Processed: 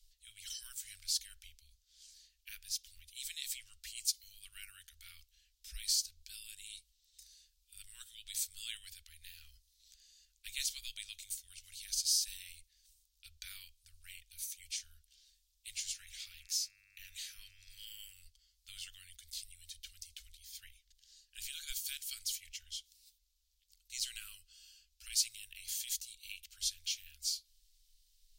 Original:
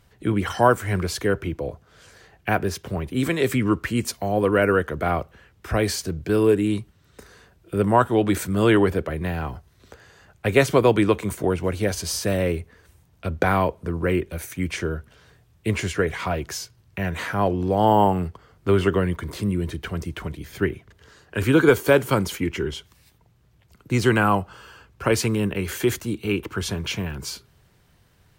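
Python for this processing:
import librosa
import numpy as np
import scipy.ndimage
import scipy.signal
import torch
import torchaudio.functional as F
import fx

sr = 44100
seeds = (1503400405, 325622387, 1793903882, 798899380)

y = fx.dmg_buzz(x, sr, base_hz=100.0, harmonics=27, level_db=-36.0, tilt_db=-4, odd_only=False, at=(15.89, 18.12), fade=0.02)
y = scipy.signal.sosfilt(scipy.signal.cheby2(4, 80, [140.0, 870.0], 'bandstop', fs=sr, output='sos'), y)
y = fx.high_shelf(y, sr, hz=4600.0, db=-10.5)
y = y * librosa.db_to_amplitude(4.5)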